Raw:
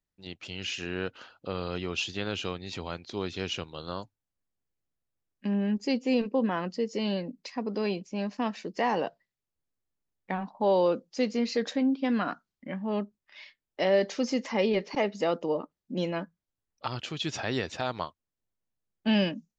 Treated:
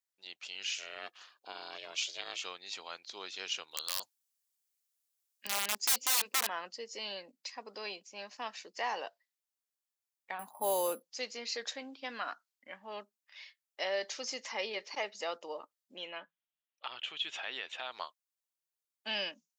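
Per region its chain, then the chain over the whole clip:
0:00.74–0:02.44: bass and treble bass +2 dB, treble +4 dB + ring modulation 240 Hz
0:03.71–0:06.48: high-shelf EQ 2,500 Hz +10.5 dB + wrap-around overflow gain 22 dB
0:10.39–0:11.03: bad sample-rate conversion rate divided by 4×, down filtered, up hold + low-shelf EQ 360 Hz +11 dB + upward compression, threshold −33 dBFS
0:15.96–0:17.92: high shelf with overshoot 4,000 Hz −8 dB, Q 3 + downward compressor 1.5 to 1, threshold −34 dBFS
whole clip: high-pass filter 730 Hz 12 dB per octave; high-shelf EQ 3,800 Hz +10 dB; level −6 dB

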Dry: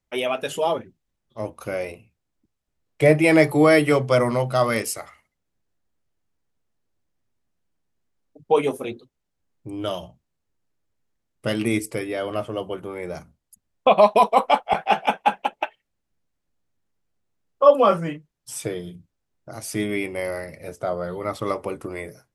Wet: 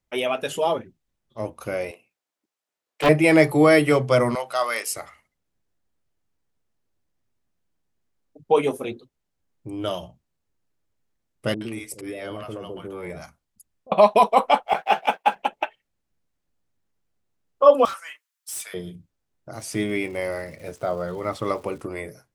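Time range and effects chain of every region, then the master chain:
0:01.91–0:03.09: high-pass filter 520 Hz + highs frequency-modulated by the lows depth 0.61 ms
0:04.35–0:04.91: high-pass filter 750 Hz + one half of a high-frequency compander encoder only
0:11.54–0:13.92: downward compressor, threshold −27 dBFS + volume swells 107 ms + multiband delay without the direct sound lows, highs 70 ms, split 650 Hz
0:14.67–0:15.36: mu-law and A-law mismatch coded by A + bass and treble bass −10 dB, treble −1 dB
0:17.85–0:18.74: high-pass filter 1,100 Hz 24 dB per octave + high-shelf EQ 8,100 Hz +10.5 dB + gain into a clipping stage and back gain 29.5 dB
0:19.55–0:21.81: low-pass filter 10,000 Hz + surface crackle 420 per second −42 dBFS
whole clip: no processing

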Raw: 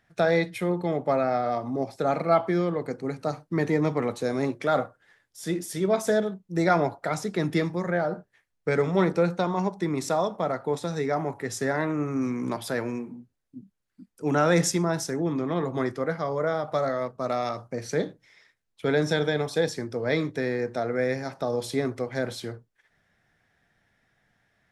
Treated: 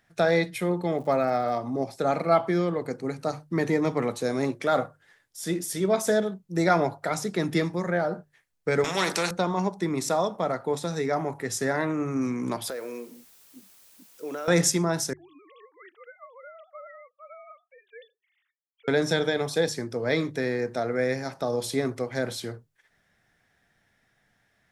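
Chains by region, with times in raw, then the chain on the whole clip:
0:00.95–0:01.57: running median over 3 samples + surface crackle 120 per second −45 dBFS
0:08.84–0:09.31: high-pass filter 550 Hz 6 dB per octave + every bin compressed towards the loudest bin 2 to 1
0:12.70–0:14.48: loudspeaker in its box 370–6,900 Hz, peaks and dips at 500 Hz +8 dB, 840 Hz −8 dB, 1,800 Hz −4 dB + downward compressor 5 to 1, threshold −31 dBFS + bit-depth reduction 10 bits, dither triangular
0:15.13–0:18.88: three sine waves on the formant tracks + first difference + one half of a high-frequency compander decoder only
whole clip: high-shelf EQ 5,100 Hz +6 dB; mains-hum notches 50/100/150 Hz

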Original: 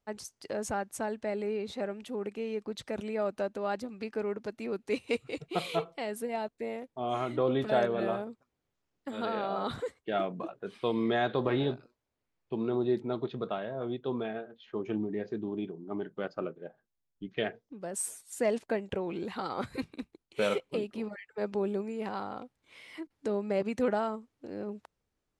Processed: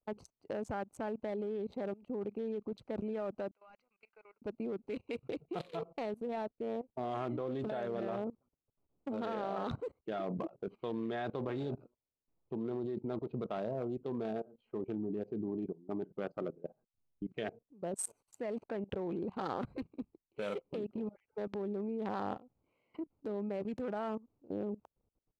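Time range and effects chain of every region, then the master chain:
0:03.51–0:04.42: four-pole ladder band-pass 2,500 Hz, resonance 35% + leveller curve on the samples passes 2
whole clip: adaptive Wiener filter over 25 samples; high-shelf EQ 4,400 Hz −6.5 dB; output level in coarse steps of 21 dB; level +5 dB

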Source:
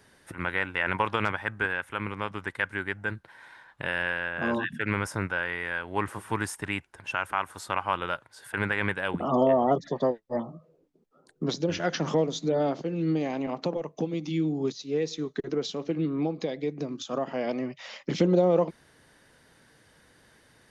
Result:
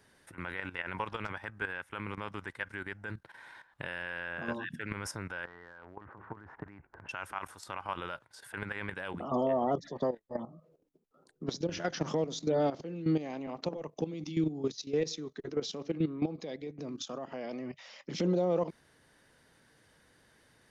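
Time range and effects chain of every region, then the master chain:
0:05.45–0:07.09: low-pass filter 1,600 Hz 24 dB per octave + downward compressor 4 to 1, threshold −42 dBFS + transient designer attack +6 dB, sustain +11 dB
whole clip: dynamic equaliser 5,400 Hz, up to +5 dB, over −56 dBFS, Q 2.9; output level in coarse steps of 13 dB; brickwall limiter −21 dBFS

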